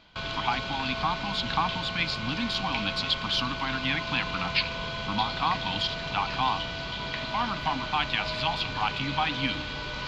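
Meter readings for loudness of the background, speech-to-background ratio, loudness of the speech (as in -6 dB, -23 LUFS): -32.5 LUFS, 2.5 dB, -30.0 LUFS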